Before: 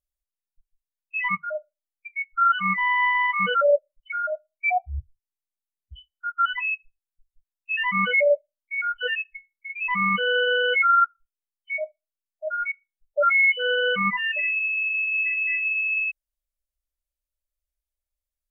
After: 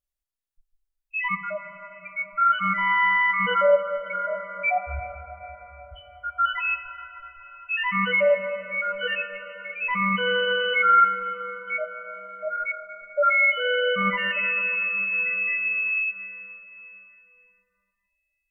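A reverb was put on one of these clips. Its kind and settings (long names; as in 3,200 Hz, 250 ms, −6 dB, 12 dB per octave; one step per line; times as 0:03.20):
dense smooth reverb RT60 4.9 s, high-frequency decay 0.5×, DRR 7.5 dB
level −1 dB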